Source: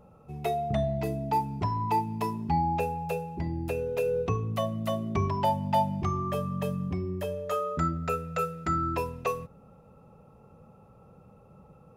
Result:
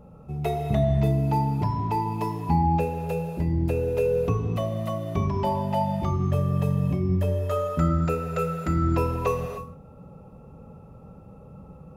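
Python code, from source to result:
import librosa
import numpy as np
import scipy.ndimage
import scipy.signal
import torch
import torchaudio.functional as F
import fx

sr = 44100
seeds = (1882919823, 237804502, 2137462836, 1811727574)

y = fx.low_shelf(x, sr, hz=460.0, db=8.0)
y = fx.rider(y, sr, range_db=5, speed_s=2.0)
y = fx.rev_gated(y, sr, seeds[0], gate_ms=330, shape='flat', drr_db=2.5)
y = y * librosa.db_to_amplitude(-2.5)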